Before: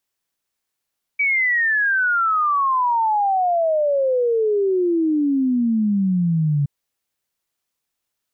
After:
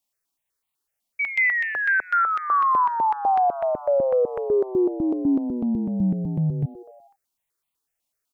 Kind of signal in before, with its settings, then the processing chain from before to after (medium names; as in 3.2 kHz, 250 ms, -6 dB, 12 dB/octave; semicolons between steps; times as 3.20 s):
log sweep 2.3 kHz -> 140 Hz 5.47 s -15.5 dBFS
frequency-shifting echo 83 ms, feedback 61%, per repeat +110 Hz, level -18 dB; stepped phaser 8 Hz 410–1600 Hz